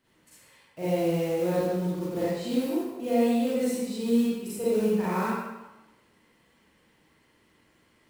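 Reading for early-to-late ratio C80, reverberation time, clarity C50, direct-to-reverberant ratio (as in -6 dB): -0.5 dB, 1.0 s, -5.0 dB, -10.5 dB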